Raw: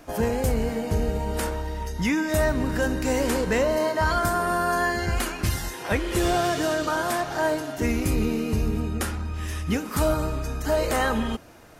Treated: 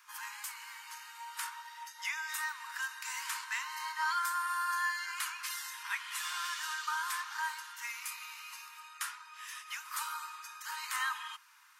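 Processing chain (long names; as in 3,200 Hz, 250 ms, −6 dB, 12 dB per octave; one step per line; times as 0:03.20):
Butterworth high-pass 930 Hz 96 dB per octave
level −6.5 dB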